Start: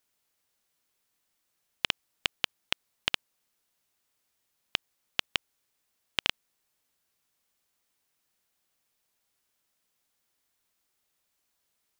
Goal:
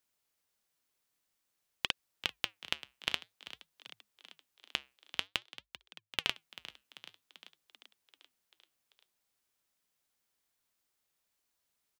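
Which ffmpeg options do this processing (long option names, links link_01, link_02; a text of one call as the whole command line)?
ffmpeg -i in.wav -filter_complex "[0:a]asettb=1/sr,asplit=3[link_01][link_02][link_03];[link_01]atrim=end=5.274[link_04];[link_02]atrim=start=5.27:end=6.24,asetpts=PTS-STARTPTS,afade=type=in:duration=0.004:curve=qsin,afade=type=out:start_time=0.966:duration=0.004:curve=qsin,acrusher=bits=6:dc=4:mix=0:aa=0.000001[link_05];[link_03]atrim=start=6.236[link_06];[link_04][link_05]acrossfade=duration=0.004:curve1=hsin:curve2=qsin[link_07];[link_07][link_06]acrossfade=duration=0.004:curve1=qsin:curve2=hsin,asplit=8[link_08][link_09][link_10][link_11][link_12][link_13][link_14][link_15];[link_09]adelay=390,afreqshift=51,volume=-15.5dB[link_16];[link_10]adelay=780,afreqshift=102,volume=-19.2dB[link_17];[link_11]adelay=1170,afreqshift=153,volume=-23dB[link_18];[link_12]adelay=1560,afreqshift=204,volume=-26.7dB[link_19];[link_13]adelay=1950,afreqshift=255,volume=-30.5dB[link_20];[link_14]adelay=2340,afreqshift=306,volume=-34.2dB[link_21];[link_15]adelay=2730,afreqshift=357,volume=-38dB[link_22];[link_08][link_16][link_17][link_18][link_19][link_20][link_21][link_22]amix=inputs=8:normalize=0,flanger=delay=0.6:depth=7.3:regen=-83:speed=0.51:shape=triangular" out.wav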